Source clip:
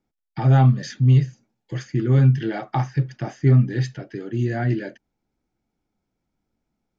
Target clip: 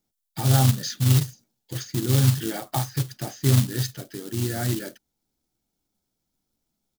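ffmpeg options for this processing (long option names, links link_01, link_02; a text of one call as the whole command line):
ffmpeg -i in.wav -filter_complex "[0:a]asplit=3[link_01][link_02][link_03];[link_02]asetrate=35002,aresample=44100,atempo=1.25992,volume=-16dB[link_04];[link_03]asetrate=37084,aresample=44100,atempo=1.18921,volume=-13dB[link_05];[link_01][link_04][link_05]amix=inputs=3:normalize=0,acrusher=bits=4:mode=log:mix=0:aa=0.000001,aexciter=amount=2.2:drive=8.5:freq=3200,volume=-4.5dB" out.wav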